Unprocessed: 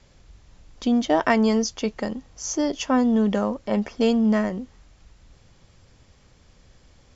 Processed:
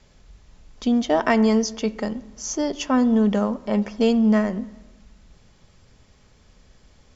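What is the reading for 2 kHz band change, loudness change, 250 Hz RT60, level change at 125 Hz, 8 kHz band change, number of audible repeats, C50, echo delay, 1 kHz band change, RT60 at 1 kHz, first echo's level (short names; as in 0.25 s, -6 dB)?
0.0 dB, +1.0 dB, 1.7 s, n/a, n/a, none, 18.0 dB, none, 0.0 dB, 1.1 s, none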